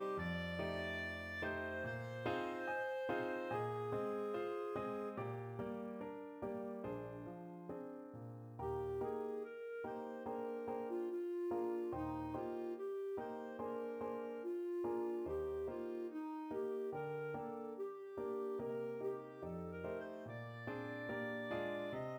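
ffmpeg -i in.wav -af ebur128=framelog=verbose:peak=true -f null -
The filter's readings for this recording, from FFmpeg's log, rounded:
Integrated loudness:
  I:         -44.0 LUFS
  Threshold: -54.0 LUFS
Loudness range:
  LRA:         4.3 LU
  Threshold: -64.1 LUFS
  LRA low:   -46.5 LUFS
  LRA high:  -42.2 LUFS
True peak:
  Peak:      -28.6 dBFS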